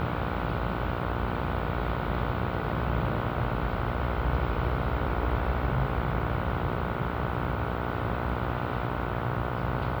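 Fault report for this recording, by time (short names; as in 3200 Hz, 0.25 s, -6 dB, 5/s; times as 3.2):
buzz 60 Hz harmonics 25 -33 dBFS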